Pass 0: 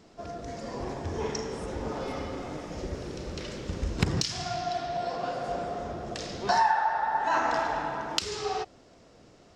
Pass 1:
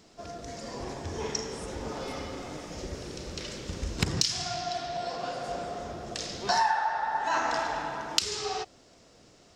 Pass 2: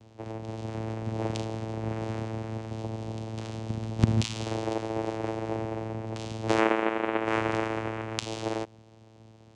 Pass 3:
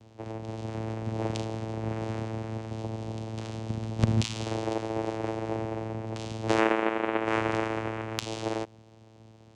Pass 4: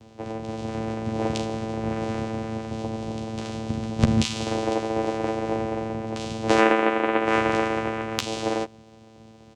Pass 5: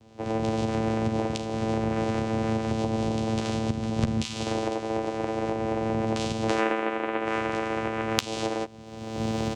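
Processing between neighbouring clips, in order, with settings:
treble shelf 2.9 kHz +9.5 dB; trim -3 dB
vocoder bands 4, saw 111 Hz; trim +2.5 dB
one-sided clip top -12 dBFS
doubling 13 ms -5 dB; trim +5 dB
recorder AGC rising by 37 dB/s; trim -7 dB

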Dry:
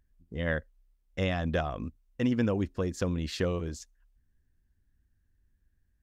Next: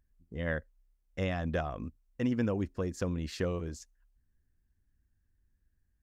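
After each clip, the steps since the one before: peaking EQ 3.5 kHz -4.5 dB 0.71 oct; trim -3 dB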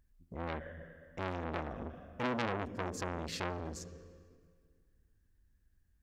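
reverberation RT60 1.9 s, pre-delay 55 ms, DRR 14 dB; transformer saturation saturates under 2.2 kHz; trim +2.5 dB

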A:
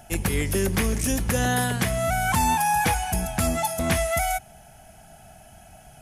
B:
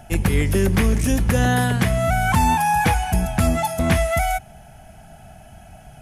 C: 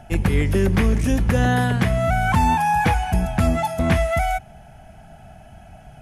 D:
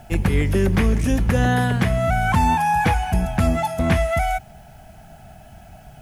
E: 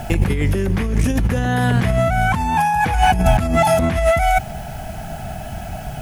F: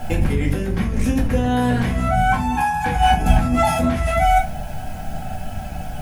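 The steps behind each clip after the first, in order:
tone controls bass +4 dB, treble -6 dB; trim +3.5 dB
treble shelf 5.7 kHz -10.5 dB
word length cut 10-bit, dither triangular
compressor with a negative ratio -25 dBFS, ratio -1; trim +8.5 dB
reverberation RT60 0.35 s, pre-delay 4 ms, DRR -2.5 dB; trim -6.5 dB

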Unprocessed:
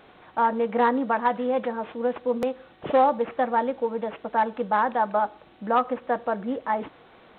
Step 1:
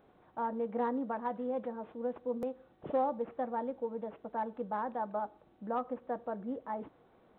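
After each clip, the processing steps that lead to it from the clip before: peaking EQ 2.9 kHz -13 dB 2.7 oct; trim -8.5 dB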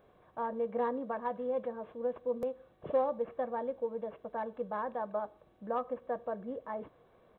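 comb 1.8 ms, depth 42%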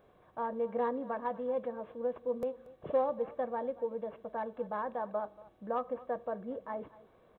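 delay 233 ms -19.5 dB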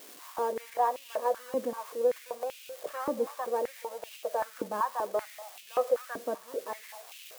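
zero-crossing glitches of -36.5 dBFS; step-sequenced high-pass 5.2 Hz 280–2700 Hz; trim +1 dB

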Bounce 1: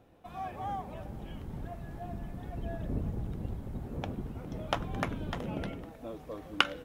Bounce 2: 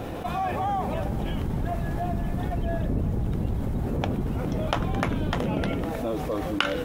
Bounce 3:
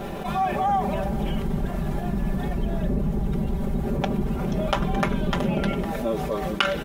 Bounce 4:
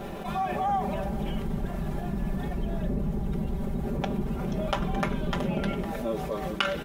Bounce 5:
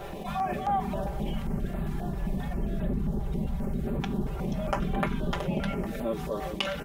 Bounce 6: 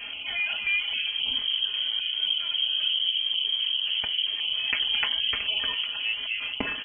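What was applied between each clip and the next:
level flattener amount 70%
comb 5.1 ms, depth 90%
flange 0.67 Hz, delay 8.9 ms, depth 3.9 ms, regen -87%
step-sequenced notch 7.5 Hz 230–5700 Hz
frequency inversion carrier 3.2 kHz; trim +1 dB

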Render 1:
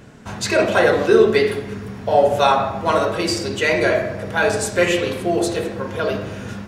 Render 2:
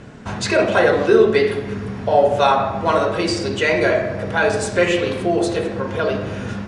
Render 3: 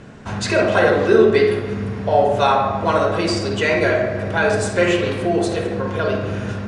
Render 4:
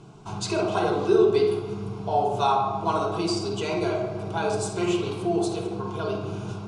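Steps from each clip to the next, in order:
elliptic low-pass 10 kHz, stop band 50 dB; treble shelf 4.6 kHz -7.5 dB; in parallel at -1 dB: compression, threshold -28 dBFS, peak gain reduction 18 dB
tape echo 142 ms, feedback 74%, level -15 dB, low-pass 4.3 kHz; on a send at -7 dB: reverberation RT60 0.35 s, pre-delay 42 ms; on the sum: trim -1 dB
static phaser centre 360 Hz, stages 8; trim -4 dB

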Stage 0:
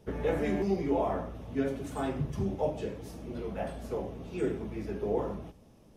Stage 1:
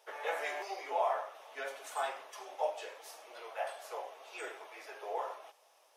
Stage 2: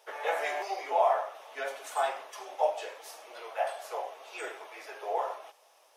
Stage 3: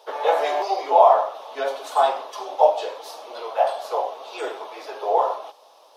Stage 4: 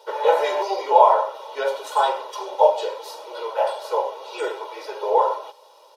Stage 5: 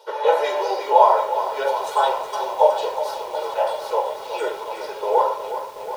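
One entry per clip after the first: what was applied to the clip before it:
inverse Chebyshev high-pass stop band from 200 Hz, stop band 60 dB; trim +3 dB
dynamic bell 710 Hz, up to +4 dB, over -47 dBFS; trim +4 dB
graphic EQ 250/500/1000/2000/4000/8000 Hz +10/+6/+9/-7/+11/-4 dB; trim +3 dB
comb 2.1 ms, depth 86%; trim -1 dB
bit-crushed delay 366 ms, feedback 80%, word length 7-bit, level -10.5 dB

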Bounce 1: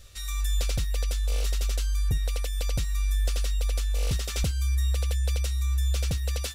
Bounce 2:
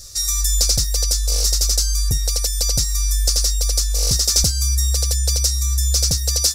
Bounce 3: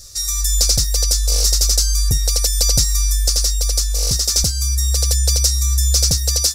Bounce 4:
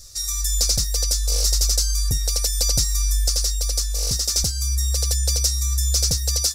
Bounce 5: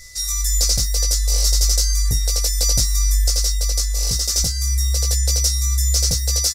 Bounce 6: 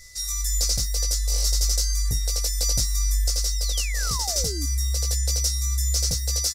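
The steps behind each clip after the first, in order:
resonant high shelf 3.9 kHz +10.5 dB, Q 3; trim +5.5 dB
level rider; trim -1 dB
flange 0.63 Hz, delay 0.8 ms, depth 4.4 ms, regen +80%
doubling 18 ms -4 dB; whistle 2 kHz -45 dBFS
painted sound fall, 3.52–4.66 s, 260–6400 Hz -30 dBFS; trim -5.5 dB

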